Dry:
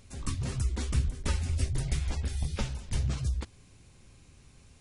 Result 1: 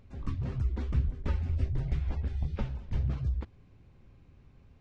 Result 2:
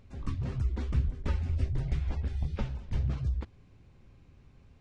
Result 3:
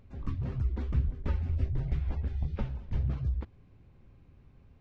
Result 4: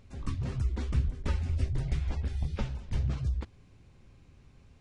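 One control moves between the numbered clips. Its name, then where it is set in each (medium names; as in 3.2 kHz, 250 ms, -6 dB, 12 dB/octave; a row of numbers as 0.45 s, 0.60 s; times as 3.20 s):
tape spacing loss, at 10 kHz: 37 dB, 29 dB, 46 dB, 20 dB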